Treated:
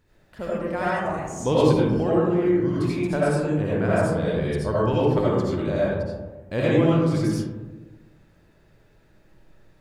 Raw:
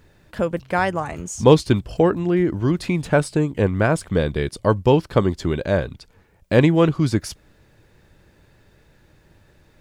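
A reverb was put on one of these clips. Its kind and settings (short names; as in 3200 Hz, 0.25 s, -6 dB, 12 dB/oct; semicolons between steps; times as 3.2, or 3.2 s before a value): digital reverb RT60 1.3 s, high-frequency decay 0.3×, pre-delay 40 ms, DRR -8 dB; gain -12 dB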